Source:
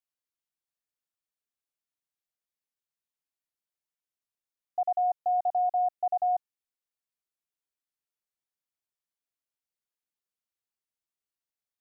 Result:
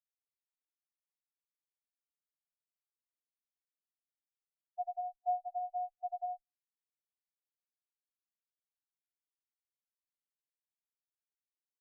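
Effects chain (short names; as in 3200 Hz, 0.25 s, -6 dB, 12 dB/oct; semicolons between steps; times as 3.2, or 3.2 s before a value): minimum comb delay 4.3 ms; bell 510 Hz +12.5 dB 0.53 oct; on a send at -12 dB: reverb RT60 0.60 s, pre-delay 3 ms; on the sum: treble ducked by the level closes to 530 Hz, closed at -19.5 dBFS; spectral expander 4:1; gain -7 dB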